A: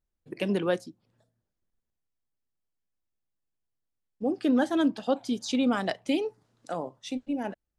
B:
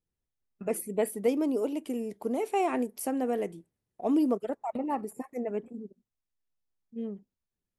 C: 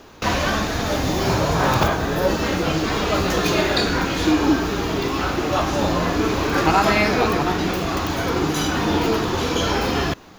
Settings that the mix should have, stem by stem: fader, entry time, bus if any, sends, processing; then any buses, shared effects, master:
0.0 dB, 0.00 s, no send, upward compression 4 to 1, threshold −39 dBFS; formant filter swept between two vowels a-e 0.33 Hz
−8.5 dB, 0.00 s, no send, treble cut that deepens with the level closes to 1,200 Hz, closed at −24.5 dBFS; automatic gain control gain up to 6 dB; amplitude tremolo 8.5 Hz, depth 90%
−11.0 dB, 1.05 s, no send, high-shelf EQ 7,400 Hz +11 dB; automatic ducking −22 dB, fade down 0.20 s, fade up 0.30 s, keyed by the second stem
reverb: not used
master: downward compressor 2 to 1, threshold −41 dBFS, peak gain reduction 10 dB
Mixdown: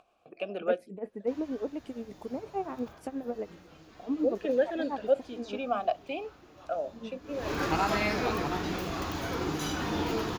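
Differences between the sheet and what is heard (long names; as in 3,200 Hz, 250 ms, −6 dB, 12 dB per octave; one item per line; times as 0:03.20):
stem A 0.0 dB → +7.5 dB
stem C: missing high-shelf EQ 7,400 Hz +11 dB
master: missing downward compressor 2 to 1, threshold −41 dBFS, peak gain reduction 10 dB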